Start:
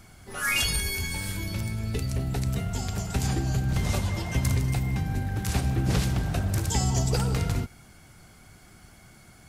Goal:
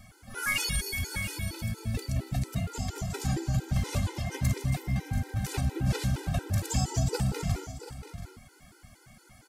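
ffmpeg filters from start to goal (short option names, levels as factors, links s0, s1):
-af "aecho=1:1:685|728:0.178|0.158,asoftclip=type=tanh:threshold=0.188,afftfilt=real='re*gt(sin(2*PI*4.3*pts/sr)*(1-2*mod(floor(b*sr/1024/260),2)),0)':imag='im*gt(sin(2*PI*4.3*pts/sr)*(1-2*mod(floor(b*sr/1024/260),2)),0)':win_size=1024:overlap=0.75"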